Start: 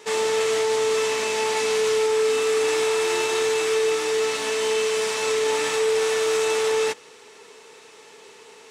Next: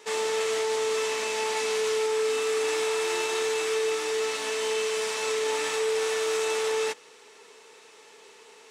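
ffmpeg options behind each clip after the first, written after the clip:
-af "lowshelf=f=170:g=-10.5,volume=0.631"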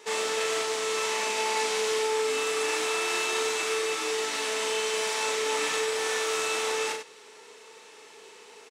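-af "aecho=1:1:37.9|96.21:0.631|0.398"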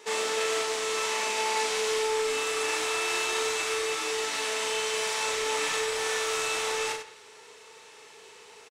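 -filter_complex "[0:a]asplit=2[s0][s1];[s1]adelay=170,highpass=300,lowpass=3400,asoftclip=type=hard:threshold=0.0631,volume=0.141[s2];[s0][s2]amix=inputs=2:normalize=0,asubboost=boost=7:cutoff=89"

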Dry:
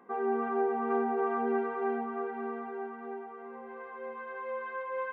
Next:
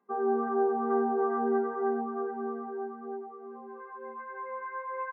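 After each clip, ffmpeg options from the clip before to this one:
-af "aecho=1:1:4.9:0.44,afftdn=nr=18:nf=-38"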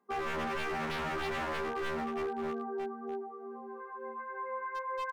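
-af "aeval=exprs='0.0316*(abs(mod(val(0)/0.0316+3,4)-2)-1)':c=same"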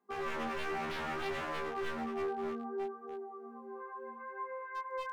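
-af "flanger=delay=19.5:depth=3.5:speed=0.65"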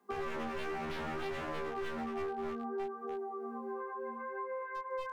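-filter_complex "[0:a]acrossover=split=97|590[s0][s1][s2];[s0]acompressor=threshold=0.00224:ratio=4[s3];[s1]acompressor=threshold=0.00355:ratio=4[s4];[s2]acompressor=threshold=0.00251:ratio=4[s5];[s3][s4][s5]amix=inputs=3:normalize=0,volume=2.66"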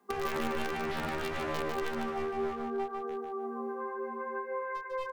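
-filter_complex "[0:a]asplit=2[s0][s1];[s1]acrusher=bits=4:mix=0:aa=0.000001,volume=0.531[s2];[s0][s2]amix=inputs=2:normalize=0,aecho=1:1:149|298|447:0.596|0.137|0.0315,volume=1.41"

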